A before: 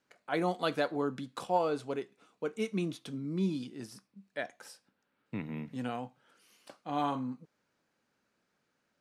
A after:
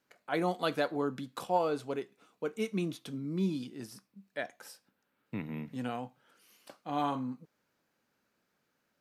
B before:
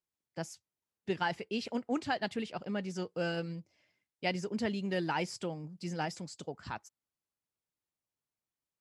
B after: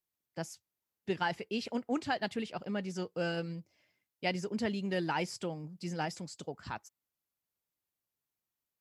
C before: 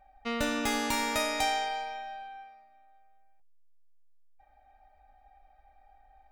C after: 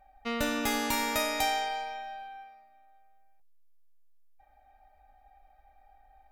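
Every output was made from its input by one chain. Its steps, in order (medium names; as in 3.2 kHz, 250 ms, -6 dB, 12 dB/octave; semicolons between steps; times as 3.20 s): peaking EQ 13 kHz +12 dB 0.21 oct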